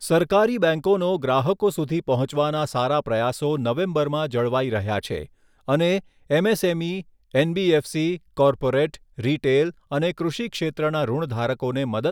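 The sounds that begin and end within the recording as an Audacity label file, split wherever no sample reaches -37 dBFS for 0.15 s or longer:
5.680000	6.000000	sound
6.300000	7.020000	sound
7.340000	8.170000	sound
8.370000	8.960000	sound
9.180000	9.710000	sound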